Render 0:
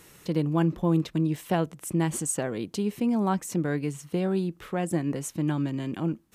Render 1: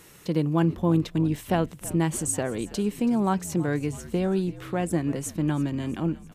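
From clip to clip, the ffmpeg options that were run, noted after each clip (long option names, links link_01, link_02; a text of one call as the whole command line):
ffmpeg -i in.wav -filter_complex "[0:a]asplit=6[link_01][link_02][link_03][link_04][link_05][link_06];[link_02]adelay=328,afreqshift=-61,volume=-18dB[link_07];[link_03]adelay=656,afreqshift=-122,volume=-23dB[link_08];[link_04]adelay=984,afreqshift=-183,volume=-28.1dB[link_09];[link_05]adelay=1312,afreqshift=-244,volume=-33.1dB[link_10];[link_06]adelay=1640,afreqshift=-305,volume=-38.1dB[link_11];[link_01][link_07][link_08][link_09][link_10][link_11]amix=inputs=6:normalize=0,volume=1.5dB" out.wav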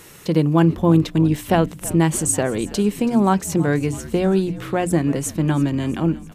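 ffmpeg -i in.wav -af "bandreject=frequency=60:width_type=h:width=6,bandreject=frequency=120:width_type=h:width=6,bandreject=frequency=180:width_type=h:width=6,bandreject=frequency=240:width_type=h:width=6,bandreject=frequency=300:width_type=h:width=6,volume=7.5dB" out.wav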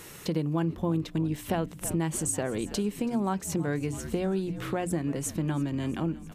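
ffmpeg -i in.wav -af "acompressor=threshold=-28dB:ratio=2.5,volume=-2dB" out.wav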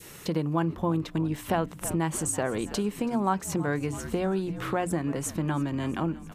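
ffmpeg -i in.wav -af "adynamicequalizer=threshold=0.00501:dfrequency=1100:dqfactor=0.91:tfrequency=1100:tqfactor=0.91:attack=5:release=100:ratio=0.375:range=3.5:mode=boostabove:tftype=bell" out.wav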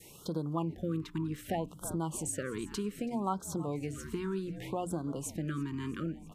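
ffmpeg -i in.wav -af "afftfilt=real='re*(1-between(b*sr/1024,600*pow(2300/600,0.5+0.5*sin(2*PI*0.65*pts/sr))/1.41,600*pow(2300/600,0.5+0.5*sin(2*PI*0.65*pts/sr))*1.41))':imag='im*(1-between(b*sr/1024,600*pow(2300/600,0.5+0.5*sin(2*PI*0.65*pts/sr))/1.41,600*pow(2300/600,0.5+0.5*sin(2*PI*0.65*pts/sr))*1.41))':win_size=1024:overlap=0.75,volume=-7dB" out.wav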